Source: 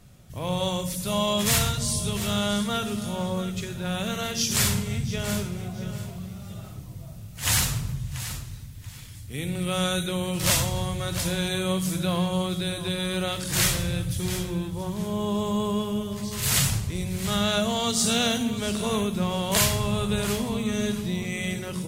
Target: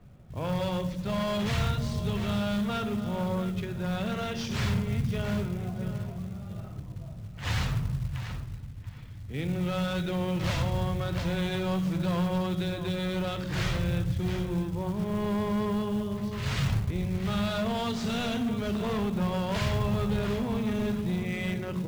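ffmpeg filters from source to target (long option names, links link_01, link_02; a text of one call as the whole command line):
ffmpeg -i in.wav -filter_complex "[0:a]lowpass=7200,acrossover=split=140[link_01][link_02];[link_02]asoftclip=type=hard:threshold=-26.5dB[link_03];[link_01][link_03]amix=inputs=2:normalize=0,adynamicsmooth=sensitivity=2.5:basefreq=1900,acrusher=bits=6:mode=log:mix=0:aa=0.000001" out.wav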